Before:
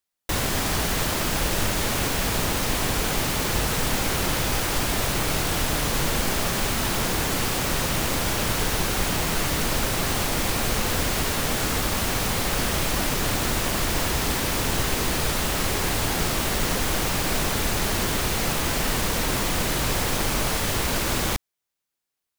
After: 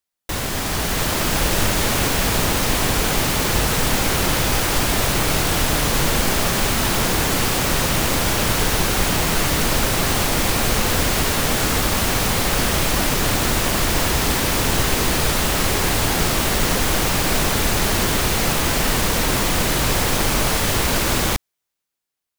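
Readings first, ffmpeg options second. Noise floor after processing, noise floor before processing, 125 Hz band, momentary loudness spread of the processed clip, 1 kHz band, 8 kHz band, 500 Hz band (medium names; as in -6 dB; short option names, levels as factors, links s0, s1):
-80 dBFS, -84 dBFS, +5.0 dB, 0 LU, +5.0 dB, +5.0 dB, +5.0 dB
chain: -af "dynaudnorm=f=170:g=11:m=1.88"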